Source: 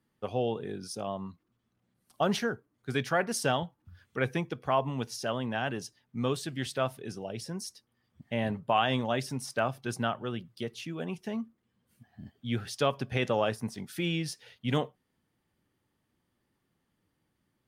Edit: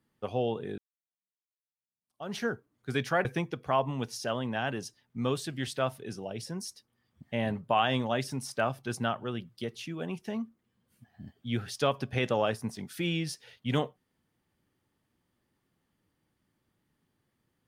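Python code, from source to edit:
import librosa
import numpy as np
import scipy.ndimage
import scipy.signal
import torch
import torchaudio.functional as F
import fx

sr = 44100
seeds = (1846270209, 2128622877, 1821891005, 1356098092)

y = fx.edit(x, sr, fx.fade_in_span(start_s=0.78, length_s=1.68, curve='exp'),
    fx.cut(start_s=3.25, length_s=0.99), tone=tone)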